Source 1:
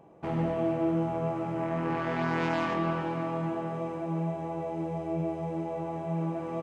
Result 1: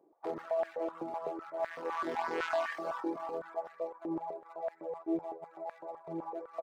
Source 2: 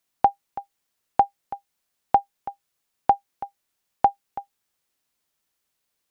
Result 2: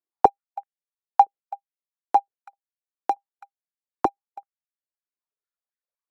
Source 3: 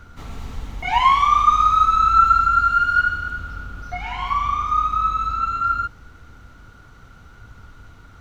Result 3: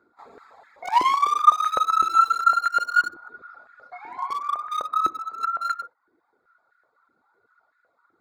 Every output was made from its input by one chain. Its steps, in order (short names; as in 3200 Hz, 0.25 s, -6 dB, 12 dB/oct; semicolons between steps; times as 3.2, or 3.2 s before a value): Wiener smoothing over 15 samples; reverb removal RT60 0.93 s; high shelf 2800 Hz +9 dB; gate -38 dBFS, range -9 dB; stepped high-pass 7.9 Hz 340–1700 Hz; gain -7.5 dB